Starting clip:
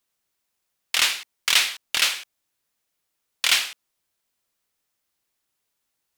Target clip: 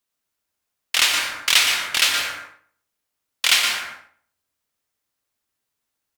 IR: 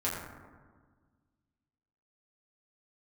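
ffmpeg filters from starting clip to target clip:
-filter_complex "[0:a]agate=range=0.501:threshold=0.0355:ratio=16:detection=peak,asplit=2[s0][s1];[s1]adelay=120,lowpass=f=2100:p=1,volume=0.141,asplit=2[s2][s3];[s3]adelay=120,lowpass=f=2100:p=1,volume=0.28,asplit=2[s4][s5];[s5]adelay=120,lowpass=f=2100:p=1,volume=0.28[s6];[s0][s2][s4][s6]amix=inputs=4:normalize=0,asplit=2[s7][s8];[1:a]atrim=start_sample=2205,afade=t=out:st=0.35:d=0.01,atrim=end_sample=15876,adelay=117[s9];[s8][s9]afir=irnorm=-1:irlink=0,volume=0.398[s10];[s7][s10]amix=inputs=2:normalize=0,volume=1.33"

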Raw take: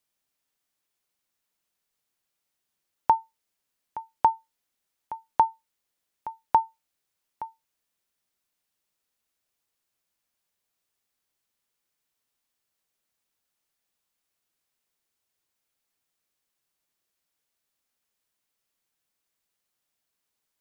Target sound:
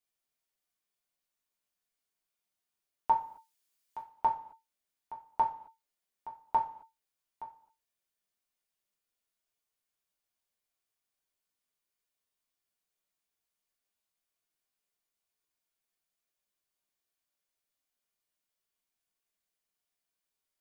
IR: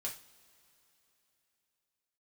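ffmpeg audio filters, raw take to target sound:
-filter_complex "[0:a]asettb=1/sr,asplit=3[s0][s1][s2];[s0]atrim=end=3.104[s3];[s1]atrim=start=3.1:end=4.02,asetpts=PTS-STARTPTS,afade=t=in:d=0.004:c=qsin,afade=t=out:st=0.916:d=0.004:c=qsin,highshelf=f=2000:g=9.5[s4];[s2]atrim=start=4.016[s5];[s3][s4]acrossfade=d=0.004:c1=hsin:c2=qsin[s6];[s6][s5]acrossfade=d=0.004:c1=qsin:c2=hsin[s7];[1:a]atrim=start_sample=2205,afade=t=out:st=0.33:d=0.01,atrim=end_sample=14994[s8];[s7][s8]afir=irnorm=-1:irlink=0,volume=0.501"

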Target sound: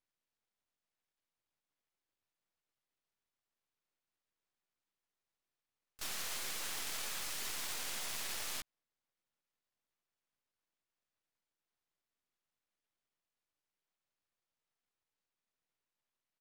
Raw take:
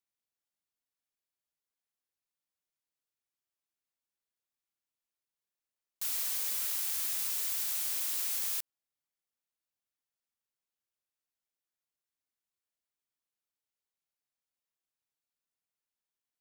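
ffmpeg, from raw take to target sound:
-filter_complex "[0:a]aemphasis=mode=reproduction:type=50fm,asplit=3[s0][s1][s2];[s1]asetrate=29433,aresample=44100,atempo=1.49831,volume=0.708[s3];[s2]asetrate=52444,aresample=44100,atempo=0.840896,volume=0.251[s4];[s0][s3][s4]amix=inputs=3:normalize=0,aeval=exprs='max(val(0),0)':c=same,volume=2.11"

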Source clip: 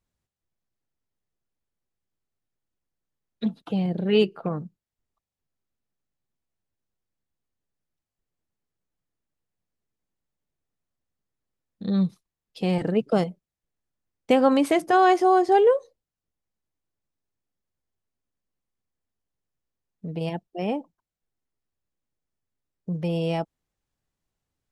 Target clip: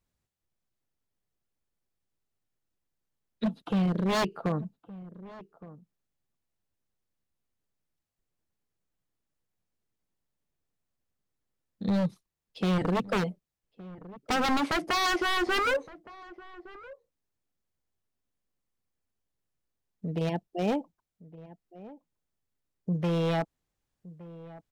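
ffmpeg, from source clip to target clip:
-filter_complex "[0:a]acrossover=split=4400[s0][s1];[s1]acompressor=threshold=0.00112:ratio=4:attack=1:release=60[s2];[s0][s2]amix=inputs=2:normalize=0,aeval=exprs='0.0891*(abs(mod(val(0)/0.0891+3,4)-2)-1)':c=same,asplit=2[s3][s4];[s4]adelay=1166,volume=0.126,highshelf=f=4000:g=-26.2[s5];[s3][s5]amix=inputs=2:normalize=0"

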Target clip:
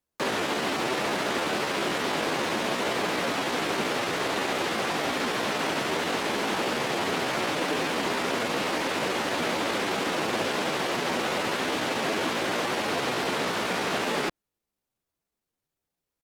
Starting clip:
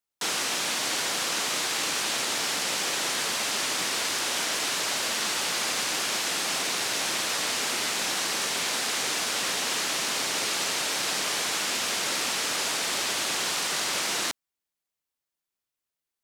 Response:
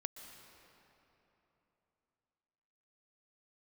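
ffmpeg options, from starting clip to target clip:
-filter_complex "[0:a]acrossover=split=3100[s0][s1];[s1]acompressor=threshold=0.00631:ratio=4:attack=1:release=60[s2];[s0][s2]amix=inputs=2:normalize=0,tiltshelf=f=660:g=7,asetrate=53981,aresample=44100,atempo=0.816958,volume=2.24"

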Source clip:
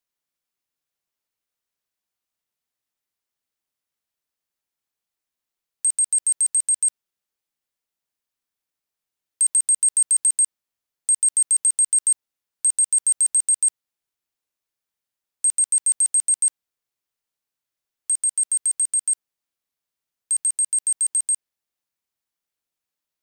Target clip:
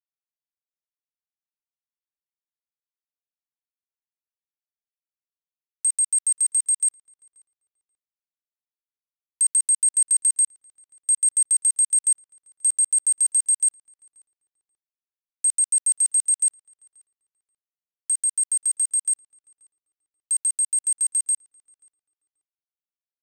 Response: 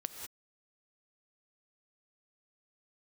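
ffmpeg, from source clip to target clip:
-filter_complex "[0:a]aecho=1:1:2.5:0.47,acrusher=bits=6:mix=0:aa=0.5,asplit=2[s0][s1];[s1]adelay=533,lowpass=f=2600:p=1,volume=0.0668,asplit=2[s2][s3];[s3]adelay=533,lowpass=f=2600:p=1,volume=0.21[s4];[s0][s2][s4]amix=inputs=3:normalize=0,volume=0.596"

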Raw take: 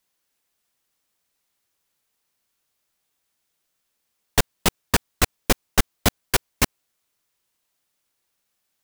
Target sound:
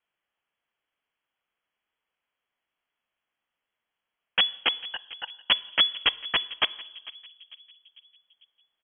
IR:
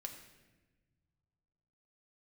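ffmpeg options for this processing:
-filter_complex "[0:a]asettb=1/sr,asplit=3[s0][s1][s2];[s0]atrim=end=4.804[s3];[s1]atrim=start=4.8:end=5.37,asetpts=PTS-STARTPTS,afade=t=in:d=0.004:c=qsin,afade=t=out:st=0.566:d=0.004:c=qsin,asplit=3[s4][s5][s6];[s4]bandpass=f=530:t=q:w=8,volume=1[s7];[s5]bandpass=f=1840:t=q:w=8,volume=0.501[s8];[s6]bandpass=f=2480:t=q:w=8,volume=0.355[s9];[s7][s8][s9]amix=inputs=3:normalize=0[s10];[s2]atrim=start=5.366[s11];[s3][s10]acrossfade=d=0.004:c1=hsin:c2=qsin[s12];[s12][s11]acrossfade=d=0.004:c1=qsin:c2=hsin,asplit=2[s13][s14];[s14]adelay=448,lowpass=f=970:p=1,volume=0.158,asplit=2[s15][s16];[s16]adelay=448,lowpass=f=970:p=1,volume=0.52,asplit=2[s17][s18];[s18]adelay=448,lowpass=f=970:p=1,volume=0.52,asplit=2[s19][s20];[s20]adelay=448,lowpass=f=970:p=1,volume=0.52,asplit=2[s21][s22];[s22]adelay=448,lowpass=f=970:p=1,volume=0.52[s23];[s13][s15][s17][s19][s21][s23]amix=inputs=6:normalize=0,asplit=2[s24][s25];[1:a]atrim=start_sample=2205,asetrate=52920,aresample=44100[s26];[s25][s26]afir=irnorm=-1:irlink=0,volume=0.422[s27];[s24][s27]amix=inputs=2:normalize=0,lowpass=f=2900:t=q:w=0.5098,lowpass=f=2900:t=q:w=0.6013,lowpass=f=2900:t=q:w=0.9,lowpass=f=2900:t=q:w=2.563,afreqshift=-3400,volume=0.631"

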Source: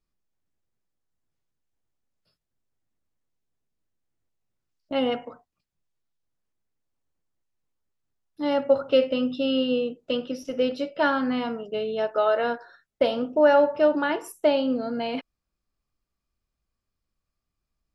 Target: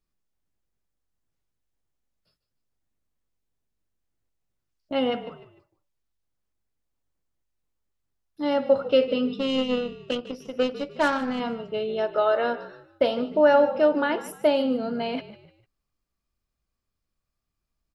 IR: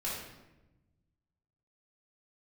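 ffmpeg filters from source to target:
-filter_complex "[0:a]asettb=1/sr,asplit=3[s0][s1][s2];[s0]atrim=end=9.344[s3];[s1]atrim=start=9.34:end=11.4,asetpts=PTS-STARTPTS,afade=t=in:d=0.004:c=qsin,afade=t=out:st=2.056:d=0.004:c=qsin,aeval=exprs='0.299*(cos(1*acos(clip(val(0)/0.299,-1,1)))-cos(1*PI/2))+0.0237*(cos(7*acos(clip(val(0)/0.299,-1,1)))-cos(7*PI/2))':c=same[s4];[s2]atrim=start=11.396[s5];[s3][s4]acrossfade=d=0.004:c1=hsin:c2=qsin[s6];[s6][s5]acrossfade=d=0.004:c1=qsin:c2=hsin,asplit=4[s7][s8][s9][s10];[s8]adelay=150,afreqshift=-48,volume=0.168[s11];[s9]adelay=300,afreqshift=-96,volume=0.0603[s12];[s10]adelay=450,afreqshift=-144,volume=0.0219[s13];[s7][s11][s12][s13]amix=inputs=4:normalize=0"

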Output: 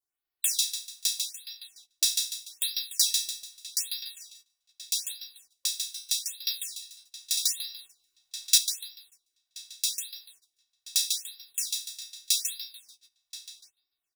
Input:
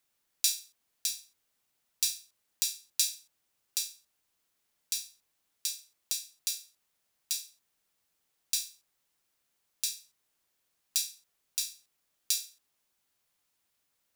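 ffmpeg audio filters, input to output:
-filter_complex "[0:a]asplit=2[s0][s1];[s1]aecho=0:1:146|292|438|584|730:0.596|0.22|0.0815|0.0302|0.0112[s2];[s0][s2]amix=inputs=2:normalize=0,adynamicequalizer=threshold=0.00282:dfrequency=3600:dqfactor=2.7:tfrequency=3600:tqfactor=2.7:attack=5:release=100:ratio=0.375:range=3:mode=boostabove:tftype=bell,aecho=1:1:2.7:0.88,asplit=2[s3][s4];[s4]adelay=1027,lowpass=f=4400:p=1,volume=0.224,asplit=2[s5][s6];[s6]adelay=1027,lowpass=f=4400:p=1,volume=0.29,asplit=2[s7][s8];[s8]adelay=1027,lowpass=f=4400:p=1,volume=0.29[s9];[s5][s7][s9]amix=inputs=3:normalize=0[s10];[s3][s10]amix=inputs=2:normalize=0,agate=range=0.178:threshold=0.00224:ratio=16:detection=peak,asettb=1/sr,asplit=3[s11][s12][s13];[s11]atrim=end=7.374[s14];[s12]atrim=start=7.37:end=8.58,asetpts=PTS-STARTPTS,afade=t=in:d=0.004:c=qsin,afade=t=out:st=1.206:d=0.004:c=qsin,acontrast=81[s15];[s13]atrim=start=8.576[s16];[s14][s15]acrossfade=d=0.004:c1=hsin:c2=qsin[s17];[s17][s16]acrossfade=d=0.004:c1=qsin:c2=hsin,afftfilt=real='re*(1-between(b*sr/1024,320*pow(8000/320,0.5+0.5*sin(2*PI*0.81*pts/sr))/1.41,320*pow(8000/320,0.5+0.5*sin(2*PI*0.81*pts/sr))*1.41))':imag='im*(1-between(b*sr/1024,320*pow(8000/320,0.5+0.5*sin(2*PI*0.81*pts/sr))/1.41,320*pow(8000/320,0.5+0.5*sin(2*PI*0.81*pts/sr))*1.41))':win_size=1024:overlap=0.75"

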